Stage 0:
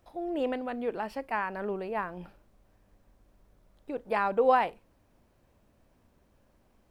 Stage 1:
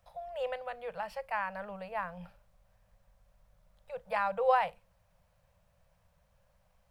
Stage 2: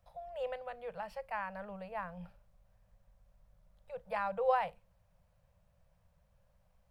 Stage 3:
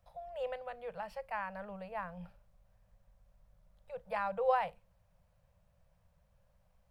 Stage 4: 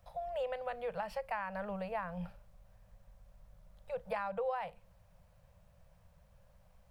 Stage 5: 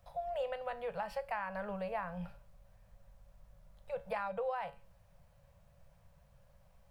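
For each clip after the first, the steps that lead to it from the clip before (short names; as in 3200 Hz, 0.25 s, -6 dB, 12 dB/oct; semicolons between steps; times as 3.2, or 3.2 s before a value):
Chebyshev band-stop 180–520 Hz, order 3; gain -2 dB
low shelf 500 Hz +6.5 dB; gain -6 dB
nothing audible
compressor 8:1, threshold -40 dBFS, peak gain reduction 15.5 dB; gain +6.5 dB
resonator 140 Hz, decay 0.37 s, harmonics all, mix 60%; gain +6 dB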